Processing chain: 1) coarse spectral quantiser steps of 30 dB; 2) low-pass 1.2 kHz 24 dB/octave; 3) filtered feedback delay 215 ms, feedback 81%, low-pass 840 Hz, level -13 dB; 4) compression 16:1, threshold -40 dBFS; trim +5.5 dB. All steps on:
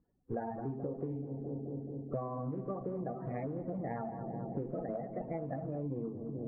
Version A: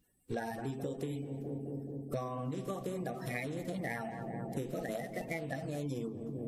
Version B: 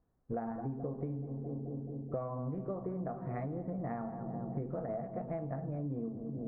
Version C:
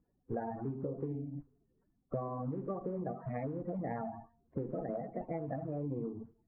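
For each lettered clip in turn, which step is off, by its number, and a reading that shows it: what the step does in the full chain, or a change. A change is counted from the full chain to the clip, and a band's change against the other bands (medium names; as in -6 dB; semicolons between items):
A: 2, 2 kHz band +14.0 dB; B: 1, 125 Hz band +2.0 dB; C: 3, momentary loudness spread change +2 LU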